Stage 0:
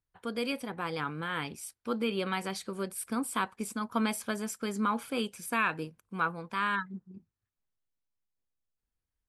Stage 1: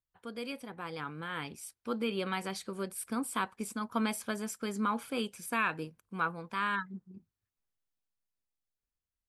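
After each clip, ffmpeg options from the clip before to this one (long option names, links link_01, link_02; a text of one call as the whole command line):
ffmpeg -i in.wav -af "dynaudnorm=framelen=380:gausssize=7:maxgain=5dB,volume=-7dB" out.wav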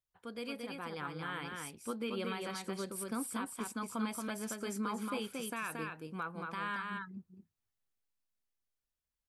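ffmpeg -i in.wav -af "alimiter=level_in=2dB:limit=-24dB:level=0:latency=1:release=175,volume=-2dB,aecho=1:1:227:0.668,volume=-2.5dB" out.wav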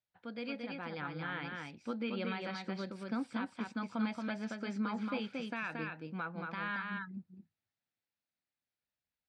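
ffmpeg -i in.wav -af "highpass=110,equalizer=frequency=410:width_type=q:width=4:gain=-9,equalizer=frequency=1100:width_type=q:width=4:gain=-9,equalizer=frequency=3100:width_type=q:width=4:gain=-5,lowpass=frequency=4300:width=0.5412,lowpass=frequency=4300:width=1.3066,volume=3dB" out.wav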